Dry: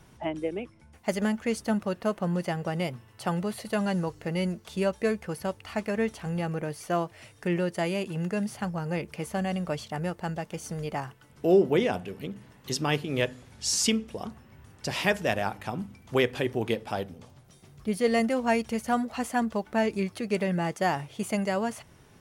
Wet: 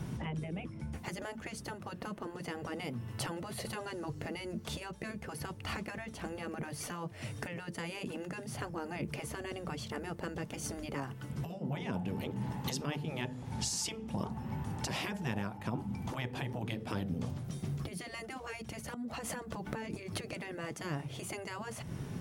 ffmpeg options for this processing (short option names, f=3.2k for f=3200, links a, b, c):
-filter_complex "[0:a]asettb=1/sr,asplit=3[a][b][c];[a]atrim=end=11.634[d];[b]atrim=start=11.63:end=16.6,asetpts=PTS-STARTPTS,afade=t=in:d=0.004:c=qsin,afade=t=out:st=4.966:d=0.004:c=qsin,equalizer=f=860:t=o:w=0.32:g=14.5[e];[c]atrim=start=16.596[f];[d][e]acrossfade=d=0.004:c1=hsin:c2=qsin[g];[g][f]acrossfade=d=0.004:c1=qsin:c2=hsin,asettb=1/sr,asplit=3[h][i][j];[h]atrim=end=18.944[k];[i]atrim=start=18.94:end=20.33,asetpts=PTS-STARTPTS,afade=t=in:d=0.004:c=qsin,afade=t=out:st=1.386:d=0.004:c=qsin,acompressor=threshold=-38dB:ratio=8:attack=3.2:release=140:knee=1:detection=peak[l];[j]atrim=start=20.326[m];[k][l]acrossfade=d=0.004:c1=hsin:c2=qsin[n];[n][m]acrossfade=d=0.004:c1=qsin:c2=hsin,acompressor=threshold=-40dB:ratio=6,afftfilt=real='re*lt(hypot(re,im),0.0316)':imag='im*lt(hypot(re,im),0.0316)':win_size=1024:overlap=0.75,equalizer=f=160:w=0.6:g=13,volume=6dB"